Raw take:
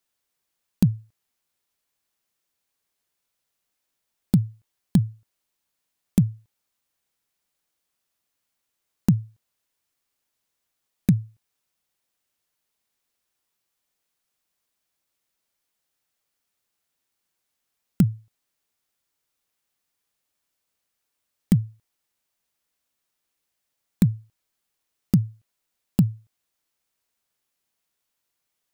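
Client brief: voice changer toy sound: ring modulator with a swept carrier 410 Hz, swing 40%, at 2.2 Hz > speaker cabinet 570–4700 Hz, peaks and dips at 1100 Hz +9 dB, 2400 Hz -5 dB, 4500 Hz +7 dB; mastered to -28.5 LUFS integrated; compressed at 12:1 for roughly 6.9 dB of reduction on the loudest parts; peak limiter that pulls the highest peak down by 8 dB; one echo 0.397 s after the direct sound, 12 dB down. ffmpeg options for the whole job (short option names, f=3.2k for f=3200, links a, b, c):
-af "acompressor=threshold=-19dB:ratio=12,alimiter=limit=-15dB:level=0:latency=1,aecho=1:1:397:0.251,aeval=exprs='val(0)*sin(2*PI*410*n/s+410*0.4/2.2*sin(2*PI*2.2*n/s))':c=same,highpass=570,equalizer=f=1.1k:t=q:w=4:g=9,equalizer=f=2.4k:t=q:w=4:g=-5,equalizer=f=4.5k:t=q:w=4:g=7,lowpass=f=4.7k:w=0.5412,lowpass=f=4.7k:w=1.3066,volume=15.5dB"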